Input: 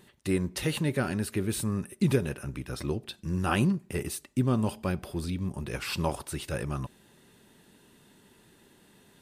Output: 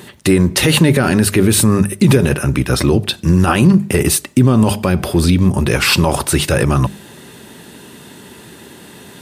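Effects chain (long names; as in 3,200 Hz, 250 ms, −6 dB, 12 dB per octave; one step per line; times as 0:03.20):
high-pass filter 59 Hz 24 dB per octave
mains-hum notches 50/100/150/200 Hz
boost into a limiter +22.5 dB
level −1 dB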